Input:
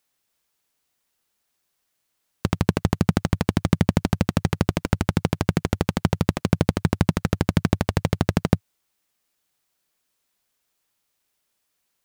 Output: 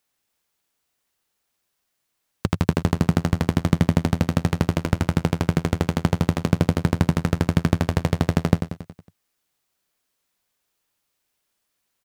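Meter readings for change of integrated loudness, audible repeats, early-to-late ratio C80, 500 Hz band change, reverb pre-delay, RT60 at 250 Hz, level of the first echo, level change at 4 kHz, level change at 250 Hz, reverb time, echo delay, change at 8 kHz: +1.0 dB, 5, no reverb audible, +0.5 dB, no reverb audible, no reverb audible, −9.5 dB, −0.5 dB, +1.0 dB, no reverb audible, 92 ms, −1.0 dB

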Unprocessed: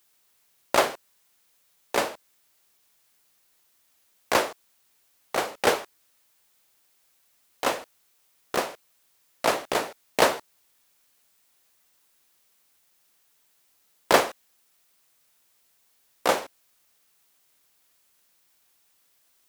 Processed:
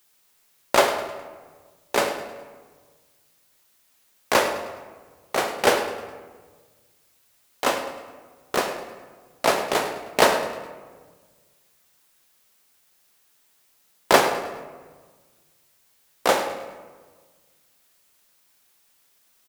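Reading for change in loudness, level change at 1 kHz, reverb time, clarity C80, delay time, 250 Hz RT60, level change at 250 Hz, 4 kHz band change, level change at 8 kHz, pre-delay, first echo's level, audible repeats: +2.5 dB, +3.5 dB, 1.5 s, 8.5 dB, 104 ms, 1.8 s, +3.5 dB, +3.5 dB, +3.0 dB, 5 ms, −13.5 dB, 2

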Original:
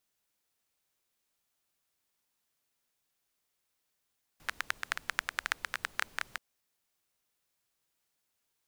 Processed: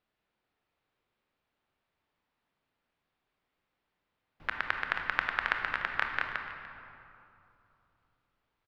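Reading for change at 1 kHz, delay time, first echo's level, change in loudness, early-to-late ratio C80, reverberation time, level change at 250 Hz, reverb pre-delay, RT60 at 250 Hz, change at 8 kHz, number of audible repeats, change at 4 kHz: +6.5 dB, 294 ms, −16.0 dB, +4.0 dB, 5.5 dB, 2.8 s, +8.0 dB, 25 ms, 3.2 s, below −15 dB, 1, −1.0 dB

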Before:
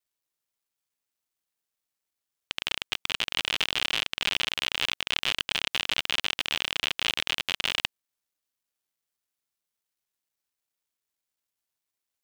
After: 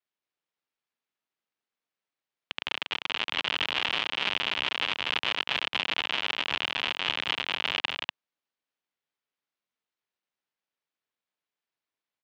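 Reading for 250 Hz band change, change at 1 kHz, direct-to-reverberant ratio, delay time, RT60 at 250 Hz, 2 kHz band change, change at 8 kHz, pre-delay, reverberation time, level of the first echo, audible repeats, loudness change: +1.0 dB, +4.0 dB, no reverb audible, 241 ms, no reverb audible, +0.5 dB, −12.0 dB, no reverb audible, no reverb audible, −4.0 dB, 1, −0.5 dB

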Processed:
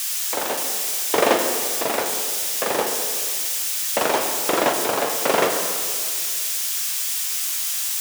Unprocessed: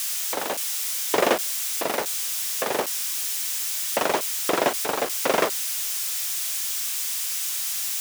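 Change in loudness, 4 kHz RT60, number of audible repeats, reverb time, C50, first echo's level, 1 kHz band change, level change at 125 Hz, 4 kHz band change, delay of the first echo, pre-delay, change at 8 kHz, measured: +3.5 dB, 1.9 s, no echo audible, 2.0 s, 4.5 dB, no echo audible, +3.5 dB, +3.5 dB, +3.0 dB, no echo audible, 4 ms, +3.0 dB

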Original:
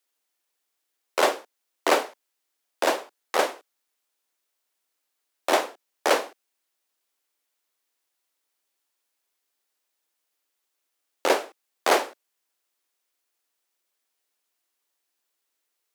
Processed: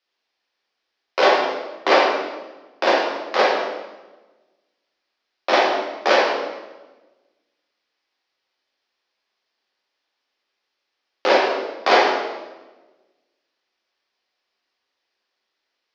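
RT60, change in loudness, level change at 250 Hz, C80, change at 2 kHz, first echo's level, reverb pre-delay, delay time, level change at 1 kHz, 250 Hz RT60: 1.2 s, +6.0 dB, +6.5 dB, 4.0 dB, +8.0 dB, no echo audible, 4 ms, no echo audible, +7.5 dB, 1.5 s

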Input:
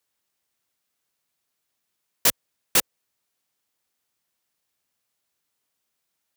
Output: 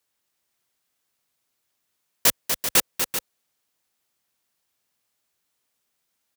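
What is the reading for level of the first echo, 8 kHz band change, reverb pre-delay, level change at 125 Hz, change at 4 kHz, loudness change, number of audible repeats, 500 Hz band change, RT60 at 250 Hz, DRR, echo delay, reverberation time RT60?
−7.0 dB, +2.0 dB, no reverb audible, +2.0 dB, +2.0 dB, 0.0 dB, 2, +2.0 dB, no reverb audible, no reverb audible, 243 ms, no reverb audible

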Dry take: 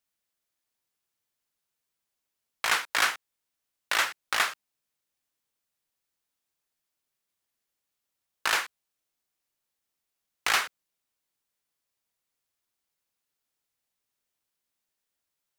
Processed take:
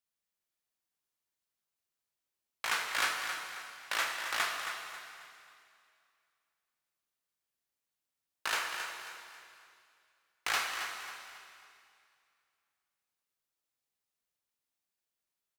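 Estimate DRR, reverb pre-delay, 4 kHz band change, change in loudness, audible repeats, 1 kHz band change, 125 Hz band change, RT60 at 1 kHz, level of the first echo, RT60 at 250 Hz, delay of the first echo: 0.5 dB, 13 ms, −5.5 dB, −8.0 dB, 4, −5.0 dB, can't be measured, 2.4 s, −9.0 dB, 2.5 s, 270 ms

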